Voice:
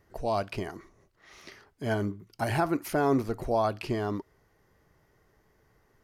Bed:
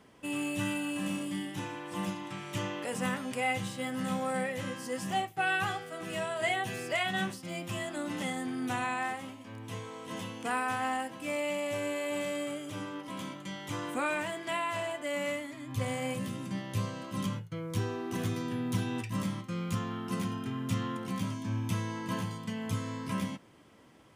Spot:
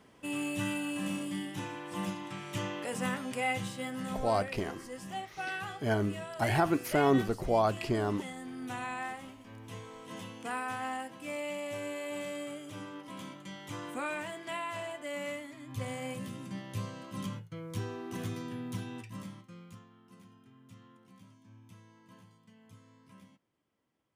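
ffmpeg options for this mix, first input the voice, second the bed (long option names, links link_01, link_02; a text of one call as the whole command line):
ffmpeg -i stem1.wav -i stem2.wav -filter_complex "[0:a]adelay=4000,volume=-0.5dB[link_01];[1:a]volume=2.5dB,afade=type=out:start_time=3.65:duration=0.73:silence=0.446684,afade=type=in:start_time=8.38:duration=0.62:silence=0.668344,afade=type=out:start_time=18.34:duration=1.55:silence=0.11885[link_02];[link_01][link_02]amix=inputs=2:normalize=0" out.wav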